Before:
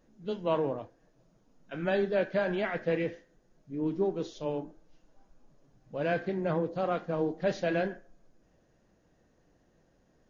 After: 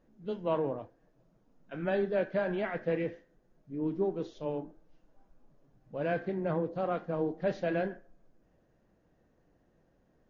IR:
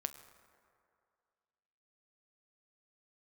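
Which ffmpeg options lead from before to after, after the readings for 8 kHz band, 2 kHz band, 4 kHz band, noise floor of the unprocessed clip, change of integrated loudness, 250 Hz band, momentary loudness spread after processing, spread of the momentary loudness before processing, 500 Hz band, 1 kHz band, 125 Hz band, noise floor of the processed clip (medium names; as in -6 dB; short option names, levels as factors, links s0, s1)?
no reading, -3.5 dB, -6.5 dB, -68 dBFS, -2.0 dB, -1.5 dB, 11 LU, 11 LU, -1.5 dB, -2.0 dB, -1.5 dB, -70 dBFS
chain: -af "lowpass=f=2200:p=1,volume=0.841"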